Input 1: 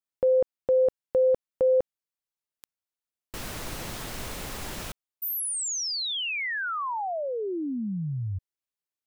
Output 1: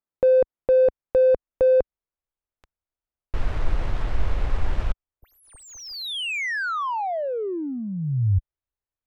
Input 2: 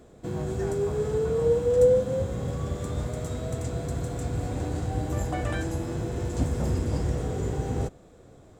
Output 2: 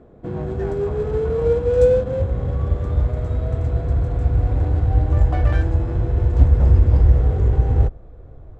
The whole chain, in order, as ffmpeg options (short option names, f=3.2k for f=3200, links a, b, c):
-af "adynamicsmooth=sensitivity=3:basefreq=1.6k,asubboost=boost=8.5:cutoff=68,volume=5dB"